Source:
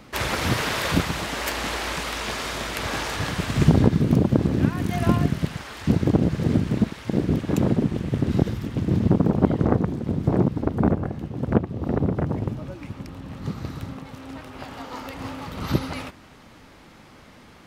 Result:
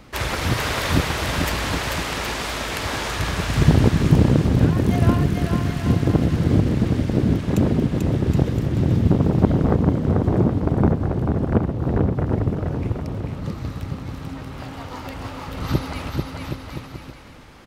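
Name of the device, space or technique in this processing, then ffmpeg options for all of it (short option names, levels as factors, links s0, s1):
low shelf boost with a cut just above: -af "lowshelf=f=100:g=7.5,equalizer=f=200:t=o:w=0.77:g=-2.5,aecho=1:1:440|770|1018|1203|1342:0.631|0.398|0.251|0.158|0.1"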